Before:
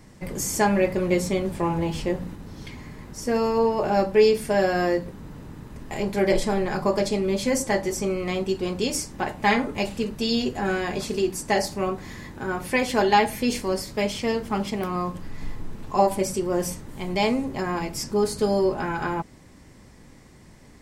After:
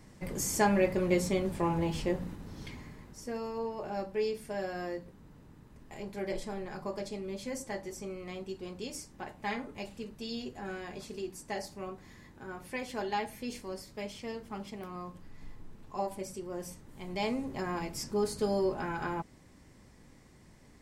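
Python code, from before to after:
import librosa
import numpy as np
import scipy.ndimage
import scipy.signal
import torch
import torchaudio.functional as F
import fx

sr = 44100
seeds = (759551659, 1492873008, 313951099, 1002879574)

y = fx.gain(x, sr, db=fx.line((2.71, -5.5), (3.39, -15.0), (16.65, -15.0), (17.56, -8.0)))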